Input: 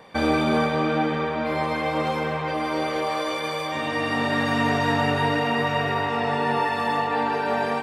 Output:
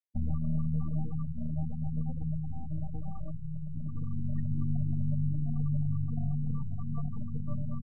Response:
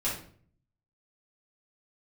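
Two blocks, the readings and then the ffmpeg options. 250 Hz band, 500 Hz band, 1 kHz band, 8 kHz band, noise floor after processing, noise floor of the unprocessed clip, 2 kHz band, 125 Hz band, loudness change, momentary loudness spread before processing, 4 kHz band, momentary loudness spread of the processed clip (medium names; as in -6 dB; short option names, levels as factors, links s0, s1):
-9.5 dB, -31.5 dB, -32.0 dB, under -35 dB, -36 dBFS, -28 dBFS, under -40 dB, +1.5 dB, -11.0 dB, 5 LU, under -40 dB, 8 LU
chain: -filter_complex "[0:a]aecho=1:1:1.6:0.63,aecho=1:1:505:0.355,anlmdn=10,aeval=exprs='0.376*(cos(1*acos(clip(val(0)/0.376,-1,1)))-cos(1*PI/2))+0.0944*(cos(4*acos(clip(val(0)/0.376,-1,1)))-cos(4*PI/2))':c=same,firequalizer=gain_entry='entry(160,0);entry(410,-25);entry(1200,-19);entry(2400,-26);entry(6700,3)':delay=0.05:min_phase=1,acrossover=split=380|2500[s0][s1][s2];[s1]adynamicsmooth=sensitivity=4:basefreq=1500[s3];[s0][s3][s2]amix=inputs=3:normalize=0,highshelf=f=3800:g=-11.5,acompressor=threshold=0.0562:ratio=3,afftfilt=real='re*gte(hypot(re,im),0.0316)':imag='im*gte(hypot(re,im),0.0316)':win_size=1024:overlap=0.75"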